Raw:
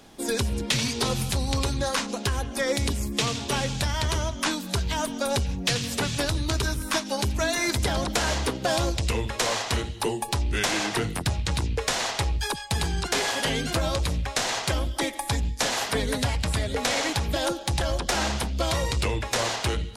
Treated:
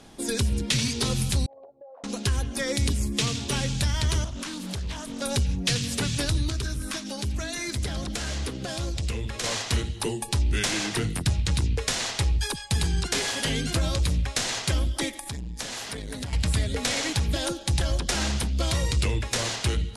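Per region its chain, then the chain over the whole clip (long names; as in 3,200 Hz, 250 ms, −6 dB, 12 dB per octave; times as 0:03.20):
0:01.46–0:02.04: spectral envelope exaggerated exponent 1.5 + flat-topped band-pass 630 Hz, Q 2.9 + downward compressor 12 to 1, threshold −43 dBFS
0:04.24–0:05.22: downward compressor 5 to 1, threshold −30 dBFS + highs frequency-modulated by the lows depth 0.45 ms
0:06.49–0:09.44: downward compressor 2 to 1, threshold −30 dBFS + notch filter 930 Hz, Q 14 + highs frequency-modulated by the lows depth 0.11 ms
0:15.16–0:16.33: downward compressor 3 to 1, threshold −31 dBFS + saturating transformer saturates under 380 Hz
whole clip: dynamic equaliser 810 Hz, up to −7 dB, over −42 dBFS, Q 0.78; Chebyshev low-pass filter 11,000 Hz, order 3; bass and treble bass +3 dB, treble +2 dB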